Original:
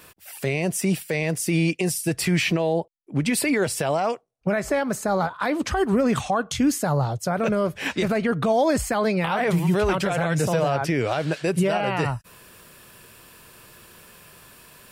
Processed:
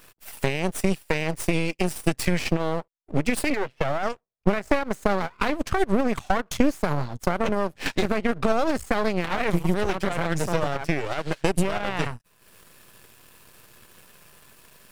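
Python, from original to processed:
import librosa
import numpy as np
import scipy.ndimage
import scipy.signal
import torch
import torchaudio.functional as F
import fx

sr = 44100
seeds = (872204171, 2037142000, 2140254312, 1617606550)

y = fx.ellip_bandpass(x, sr, low_hz=130.0, high_hz=2800.0, order=3, stop_db=40, at=(3.5, 4.03))
y = fx.transient(y, sr, attack_db=8, sustain_db=-10)
y = np.maximum(y, 0.0)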